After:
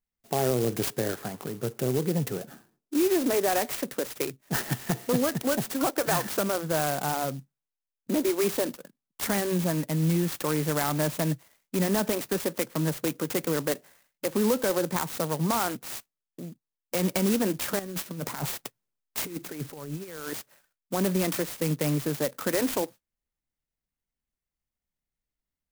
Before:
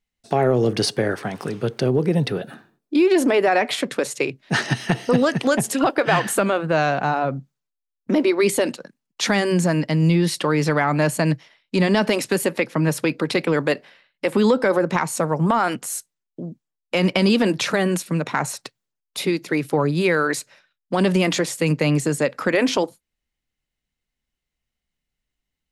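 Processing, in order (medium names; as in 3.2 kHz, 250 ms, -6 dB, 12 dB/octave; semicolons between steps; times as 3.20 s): 17.79–20.33 s: compressor with a negative ratio -25 dBFS, ratio -0.5; sampling jitter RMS 0.091 ms; trim -7.5 dB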